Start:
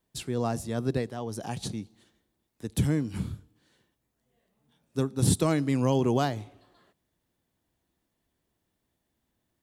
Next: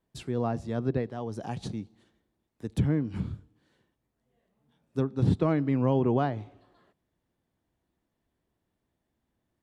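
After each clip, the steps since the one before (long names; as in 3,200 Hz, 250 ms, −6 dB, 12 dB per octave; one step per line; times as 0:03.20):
treble cut that deepens with the level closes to 2,700 Hz, closed at −22 dBFS
high-shelf EQ 3,200 Hz −10.5 dB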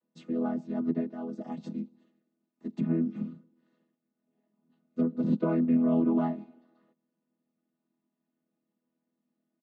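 channel vocoder with a chord as carrier major triad, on E3
comb filter 3.3 ms, depth 56%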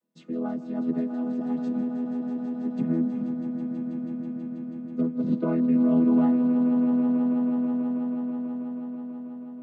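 echo that builds up and dies away 162 ms, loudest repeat 5, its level −11.5 dB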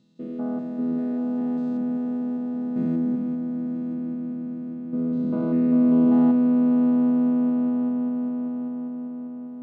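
spectrum averaged block by block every 200 ms
one half of a high-frequency compander decoder only
level +3 dB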